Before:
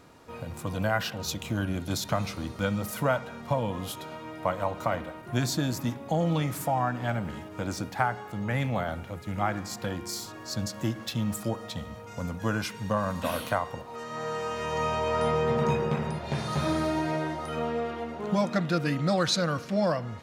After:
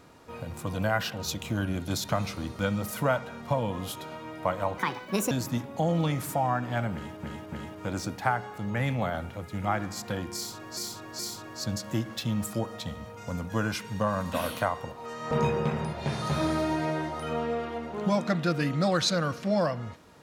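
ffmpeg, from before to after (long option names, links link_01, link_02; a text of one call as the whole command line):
ffmpeg -i in.wav -filter_complex "[0:a]asplit=8[link_01][link_02][link_03][link_04][link_05][link_06][link_07][link_08];[link_01]atrim=end=4.784[link_09];[link_02]atrim=start=4.78:end=5.63,asetpts=PTS-STARTPTS,asetrate=70560,aresample=44100,atrim=end_sample=23428,asetpts=PTS-STARTPTS[link_10];[link_03]atrim=start=5.626:end=7.552[link_11];[link_04]atrim=start=7.258:end=7.552[link_12];[link_05]atrim=start=7.258:end=10.512[link_13];[link_06]atrim=start=10.088:end=10.512[link_14];[link_07]atrim=start=10.088:end=14.212[link_15];[link_08]atrim=start=15.568[link_16];[link_09][link_10]acrossfade=duration=0.004:curve1=hsin:curve2=hsin[link_17];[link_17][link_11]acrossfade=duration=0.004:curve1=hsin:curve2=hsin[link_18];[link_18][link_12]acrossfade=duration=0.004:curve1=hsin:curve2=hsin[link_19];[link_19][link_13]acrossfade=duration=0.004:curve1=hsin:curve2=hsin[link_20];[link_20][link_14]acrossfade=duration=0.004:curve1=hsin:curve2=hsin[link_21];[link_21][link_15]acrossfade=duration=0.004:curve1=hsin:curve2=hsin[link_22];[link_22][link_16]acrossfade=duration=0.004:curve1=hsin:curve2=hsin" out.wav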